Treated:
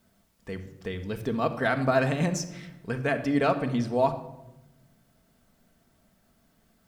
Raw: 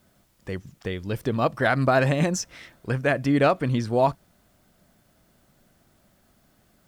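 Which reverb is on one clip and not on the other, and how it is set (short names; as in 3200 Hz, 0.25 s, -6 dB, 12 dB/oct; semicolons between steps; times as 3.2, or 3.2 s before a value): shoebox room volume 3600 m³, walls furnished, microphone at 1.6 m; gain -5 dB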